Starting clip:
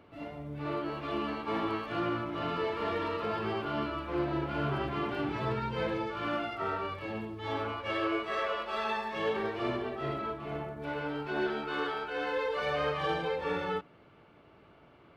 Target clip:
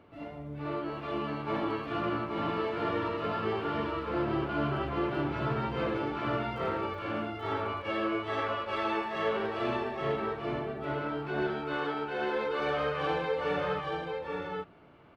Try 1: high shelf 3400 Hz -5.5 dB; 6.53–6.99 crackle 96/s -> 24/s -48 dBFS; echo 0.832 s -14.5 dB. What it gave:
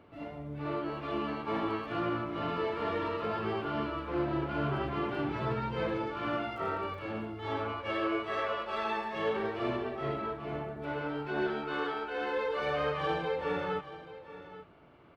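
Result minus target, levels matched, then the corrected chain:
echo-to-direct -11.5 dB
high shelf 3400 Hz -5.5 dB; 6.53–6.99 crackle 96/s -> 24/s -48 dBFS; echo 0.832 s -3 dB

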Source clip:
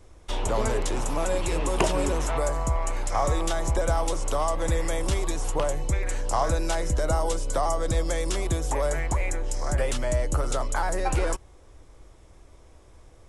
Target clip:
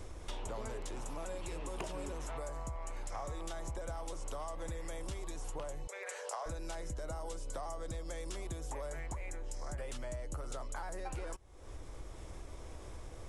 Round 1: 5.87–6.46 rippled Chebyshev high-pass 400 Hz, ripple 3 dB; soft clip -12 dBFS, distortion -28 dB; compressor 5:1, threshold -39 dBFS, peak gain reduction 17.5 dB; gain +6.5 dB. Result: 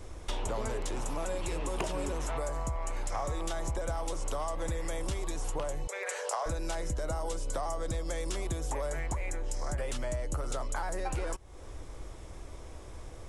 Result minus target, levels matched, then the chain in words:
compressor: peak gain reduction -7.5 dB
5.87–6.46 rippled Chebyshev high-pass 400 Hz, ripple 3 dB; soft clip -12 dBFS, distortion -28 dB; compressor 5:1, threshold -48.5 dBFS, peak gain reduction 25 dB; gain +6.5 dB

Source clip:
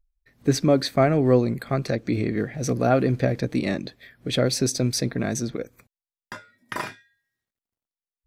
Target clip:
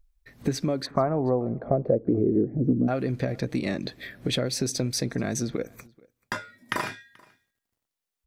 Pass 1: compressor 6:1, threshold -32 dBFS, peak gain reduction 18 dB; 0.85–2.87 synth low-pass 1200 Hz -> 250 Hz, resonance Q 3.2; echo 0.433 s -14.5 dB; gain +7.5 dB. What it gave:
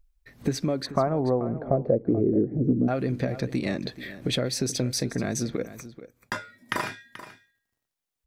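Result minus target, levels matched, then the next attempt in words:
echo-to-direct +12 dB
compressor 6:1, threshold -32 dBFS, peak gain reduction 18 dB; 0.85–2.87 synth low-pass 1200 Hz -> 250 Hz, resonance Q 3.2; echo 0.433 s -26.5 dB; gain +7.5 dB

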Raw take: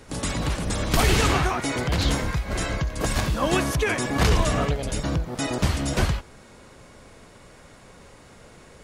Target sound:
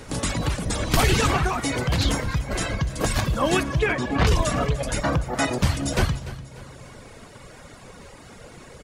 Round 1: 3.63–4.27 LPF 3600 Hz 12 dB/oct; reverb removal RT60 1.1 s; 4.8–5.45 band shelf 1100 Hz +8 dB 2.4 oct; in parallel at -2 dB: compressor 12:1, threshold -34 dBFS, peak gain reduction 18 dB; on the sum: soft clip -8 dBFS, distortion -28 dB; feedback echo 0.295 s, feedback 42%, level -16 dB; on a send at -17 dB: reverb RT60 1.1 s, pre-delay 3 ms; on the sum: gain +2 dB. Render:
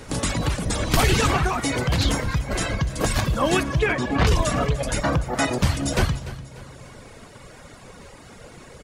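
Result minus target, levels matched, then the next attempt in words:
compressor: peak gain reduction -10 dB
3.63–4.27 LPF 3600 Hz 12 dB/oct; reverb removal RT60 1.1 s; 4.8–5.45 band shelf 1100 Hz +8 dB 2.4 oct; in parallel at -2 dB: compressor 12:1, threshold -45 dBFS, peak gain reduction 28 dB; on the sum: soft clip -8 dBFS, distortion -29 dB; feedback echo 0.295 s, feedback 42%, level -16 dB; on a send at -17 dB: reverb RT60 1.1 s, pre-delay 3 ms; on the sum: gain +2 dB

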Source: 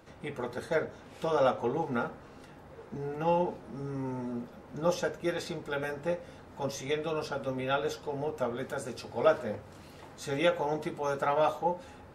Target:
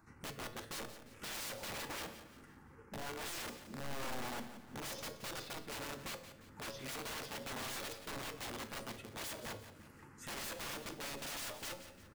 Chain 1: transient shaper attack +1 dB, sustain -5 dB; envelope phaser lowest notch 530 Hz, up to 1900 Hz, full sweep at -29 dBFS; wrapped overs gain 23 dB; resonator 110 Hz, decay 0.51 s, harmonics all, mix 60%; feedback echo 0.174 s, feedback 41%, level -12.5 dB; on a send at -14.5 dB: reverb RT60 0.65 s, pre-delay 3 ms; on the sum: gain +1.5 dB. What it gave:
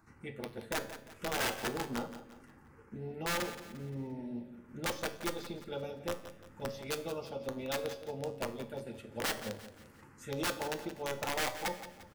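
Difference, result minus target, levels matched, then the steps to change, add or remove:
wrapped overs: distortion -18 dB
change: wrapped overs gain 34 dB

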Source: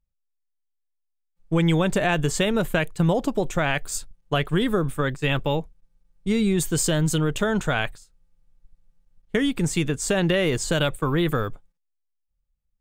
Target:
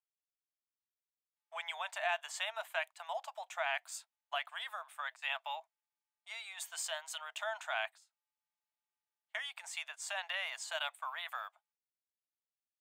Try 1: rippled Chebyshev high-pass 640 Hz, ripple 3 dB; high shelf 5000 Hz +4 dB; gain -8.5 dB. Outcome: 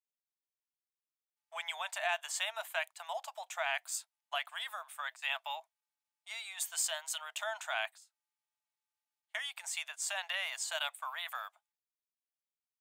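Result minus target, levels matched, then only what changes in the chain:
8000 Hz band +5.0 dB
change: high shelf 5000 Hz -6 dB

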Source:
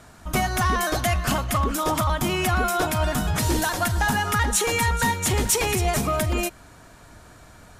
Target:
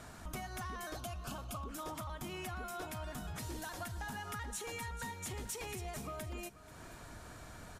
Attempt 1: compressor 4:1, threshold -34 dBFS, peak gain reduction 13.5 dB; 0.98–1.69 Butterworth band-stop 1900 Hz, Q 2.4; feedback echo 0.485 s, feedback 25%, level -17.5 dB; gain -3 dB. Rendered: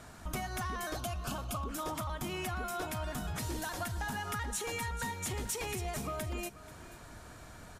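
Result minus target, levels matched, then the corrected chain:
compressor: peak gain reduction -5.5 dB
compressor 4:1, threshold -41.5 dBFS, peak gain reduction 19.5 dB; 0.98–1.69 Butterworth band-stop 1900 Hz, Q 2.4; feedback echo 0.485 s, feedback 25%, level -17.5 dB; gain -3 dB

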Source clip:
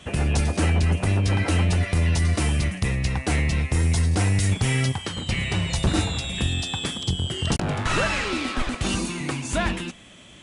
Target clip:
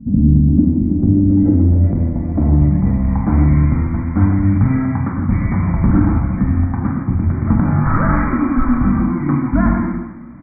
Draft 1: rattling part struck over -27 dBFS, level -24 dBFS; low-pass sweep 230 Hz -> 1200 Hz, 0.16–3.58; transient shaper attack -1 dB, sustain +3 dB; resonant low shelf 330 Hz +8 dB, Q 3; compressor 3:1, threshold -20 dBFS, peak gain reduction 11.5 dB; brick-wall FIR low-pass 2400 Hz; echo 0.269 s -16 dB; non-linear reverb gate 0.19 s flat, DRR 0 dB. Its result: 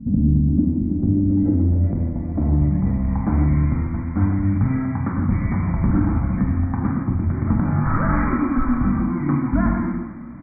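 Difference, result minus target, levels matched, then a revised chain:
compressor: peak gain reduction +5.5 dB
rattling part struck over -27 dBFS, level -24 dBFS; low-pass sweep 230 Hz -> 1200 Hz, 0.16–3.58; transient shaper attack -1 dB, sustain +3 dB; resonant low shelf 330 Hz +8 dB, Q 3; compressor 3:1, threshold -11.5 dBFS, peak gain reduction 6 dB; brick-wall FIR low-pass 2400 Hz; echo 0.269 s -16 dB; non-linear reverb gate 0.19 s flat, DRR 0 dB

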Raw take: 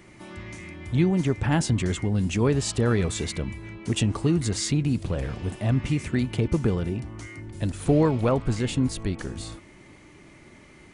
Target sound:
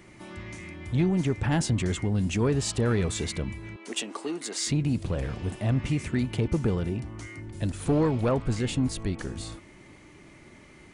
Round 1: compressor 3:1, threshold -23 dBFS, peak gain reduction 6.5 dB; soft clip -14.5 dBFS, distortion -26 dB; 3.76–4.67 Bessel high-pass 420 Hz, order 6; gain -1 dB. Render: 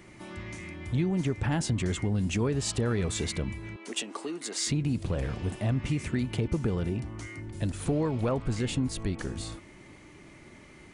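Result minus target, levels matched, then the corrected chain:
compressor: peak gain reduction +6.5 dB
soft clip -14.5 dBFS, distortion -19 dB; 3.76–4.67 Bessel high-pass 420 Hz, order 6; gain -1 dB

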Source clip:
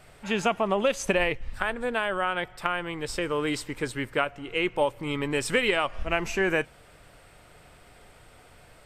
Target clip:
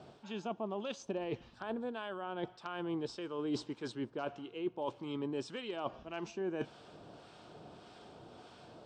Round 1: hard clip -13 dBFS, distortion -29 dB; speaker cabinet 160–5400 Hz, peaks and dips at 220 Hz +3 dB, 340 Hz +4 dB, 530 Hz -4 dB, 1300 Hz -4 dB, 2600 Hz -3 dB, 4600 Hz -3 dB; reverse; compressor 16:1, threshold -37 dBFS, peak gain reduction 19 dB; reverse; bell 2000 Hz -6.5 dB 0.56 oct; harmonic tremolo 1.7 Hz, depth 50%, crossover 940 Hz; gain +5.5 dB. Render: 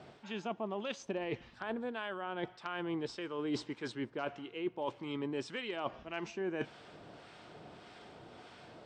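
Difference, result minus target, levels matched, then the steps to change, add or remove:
2000 Hz band +4.5 dB
change: bell 2000 Hz -17 dB 0.56 oct

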